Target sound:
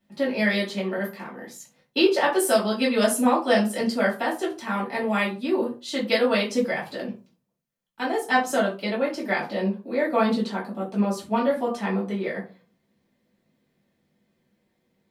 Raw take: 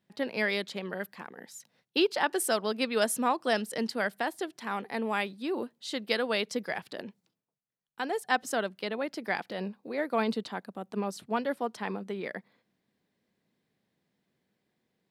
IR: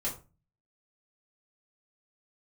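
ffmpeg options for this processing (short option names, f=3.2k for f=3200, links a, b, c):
-filter_complex "[0:a]bandreject=f=60:t=h:w=6,bandreject=f=120:t=h:w=6,bandreject=f=180:t=h:w=6,bandreject=f=240:t=h:w=6[a];[1:a]atrim=start_sample=2205[b];[a][b]afir=irnorm=-1:irlink=0,volume=2.5dB"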